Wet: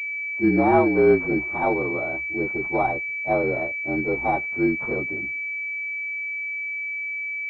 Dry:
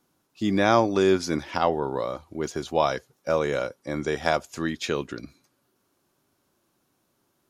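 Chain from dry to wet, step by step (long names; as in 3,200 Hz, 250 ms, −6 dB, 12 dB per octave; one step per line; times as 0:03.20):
partials spread apart or drawn together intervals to 115%
hollow resonant body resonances 340/770 Hz, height 9 dB
switching amplifier with a slow clock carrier 2,300 Hz
level +1.5 dB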